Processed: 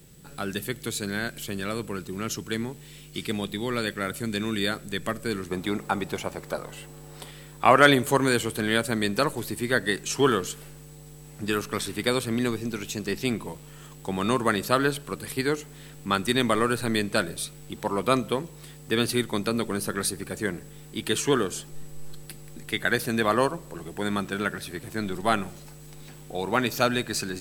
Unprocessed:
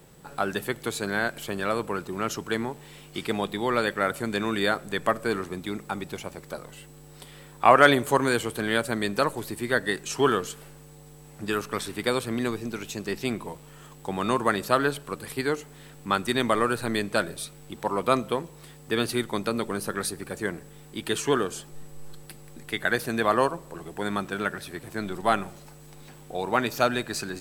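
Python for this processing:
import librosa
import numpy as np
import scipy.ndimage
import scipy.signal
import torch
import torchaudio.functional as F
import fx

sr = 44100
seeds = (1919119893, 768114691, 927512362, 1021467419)

y = fx.peak_eq(x, sr, hz=850.0, db=fx.steps((0.0, -13.5), (5.51, 2.5), (7.31, -5.5)), octaves=2.1)
y = y * 10.0 ** (3.5 / 20.0)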